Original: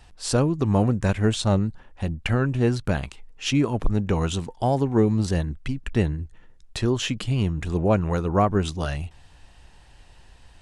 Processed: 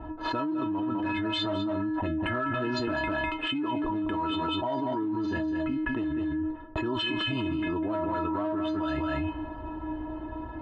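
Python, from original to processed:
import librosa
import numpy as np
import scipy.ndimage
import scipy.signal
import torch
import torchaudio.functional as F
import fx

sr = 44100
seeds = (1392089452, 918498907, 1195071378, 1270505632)

p1 = fx.env_lowpass(x, sr, base_hz=550.0, full_db=-15.5)
p2 = np.repeat(scipy.signal.resample_poly(p1, 1, 4), 4)[:len(p1)]
p3 = fx.stiff_resonator(p2, sr, f0_hz=310.0, decay_s=0.32, stiffness=0.008)
p4 = np.clip(p3, -10.0 ** (-37.5 / 20.0), 10.0 ** (-37.5 / 20.0))
p5 = p3 + (p4 * librosa.db_to_amplitude(-7.0))
p6 = fx.cabinet(p5, sr, low_hz=100.0, low_slope=12, high_hz=3600.0, hz=(130.0, 180.0, 590.0, 1100.0, 2200.0), db=(-5, -7, -8, 5, -8))
p7 = p6 + fx.echo_single(p6, sr, ms=201, db=-8.0, dry=0)
y = fx.env_flatten(p7, sr, amount_pct=100)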